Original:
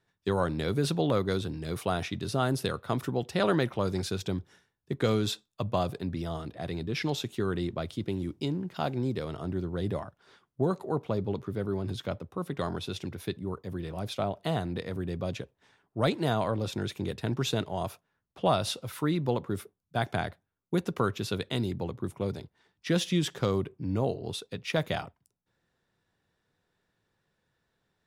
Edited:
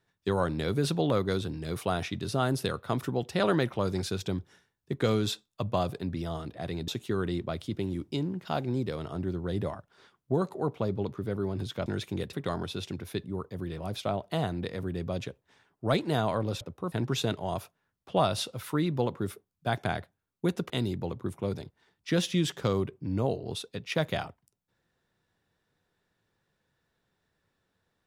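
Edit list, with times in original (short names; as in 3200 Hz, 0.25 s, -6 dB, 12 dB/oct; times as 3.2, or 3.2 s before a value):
6.88–7.17 cut
12.15–12.46 swap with 16.74–17.21
20.99–21.48 cut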